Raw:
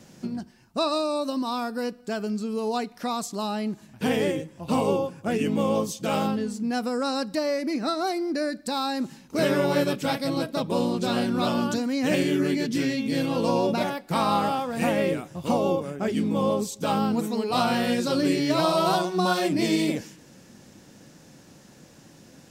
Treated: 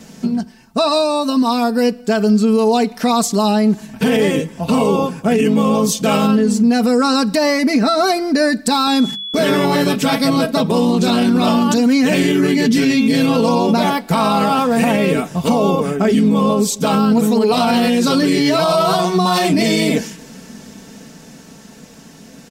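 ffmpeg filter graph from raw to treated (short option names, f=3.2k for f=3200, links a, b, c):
-filter_complex "[0:a]asettb=1/sr,asplit=3[a][b][c];[a]atrim=end=8.874[d];[b]atrim=start=8.87:end=9.65,asetpts=PTS-STARTPTS,afade=t=in:d=0.004:c=qsin,afade=t=out:st=0.776:d=0.004:c=qsin,agate=range=-27dB:threshold=-44dB:ratio=16:release=100:detection=peak,bandreject=f=50:t=h:w=6,bandreject=f=100:t=h:w=6,bandreject=f=150:t=h:w=6,bandreject=f=200:t=h:w=6,aeval=exprs='val(0)+0.0112*sin(2*PI*3400*n/s)':c=same[e];[c]atrim=start=9.646[f];[d][e]acrossfade=d=0.004:c1=hsin:c2=qsin[g];[g][f]acrossfade=d=0.004:c1=qsin:c2=hsin,aecho=1:1:4.5:0.65,dynaudnorm=f=130:g=31:m=4.5dB,alimiter=level_in=15dB:limit=-1dB:release=50:level=0:latency=1,volume=-5.5dB"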